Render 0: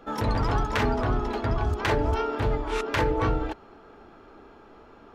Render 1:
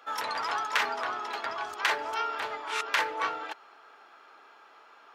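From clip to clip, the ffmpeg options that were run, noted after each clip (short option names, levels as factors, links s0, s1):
-af "highpass=1100,volume=1.41"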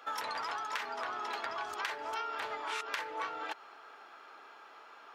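-af "acompressor=threshold=0.0178:ratio=12,volume=1.12"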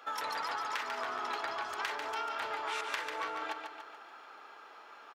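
-af "aecho=1:1:144|288|432|576|720|864:0.501|0.256|0.13|0.0665|0.0339|0.0173"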